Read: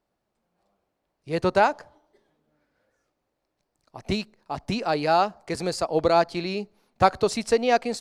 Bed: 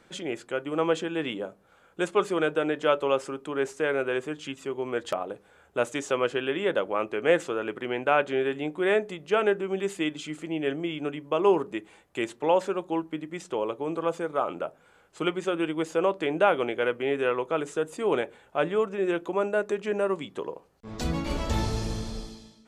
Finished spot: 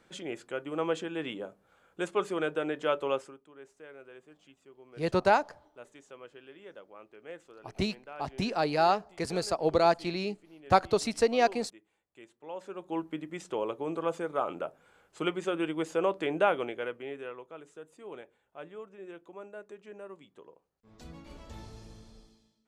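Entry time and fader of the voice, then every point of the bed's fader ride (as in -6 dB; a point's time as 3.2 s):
3.70 s, -4.0 dB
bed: 3.15 s -5.5 dB
3.46 s -23 dB
12.39 s -23 dB
13.01 s -3.5 dB
16.44 s -3.5 dB
17.53 s -19 dB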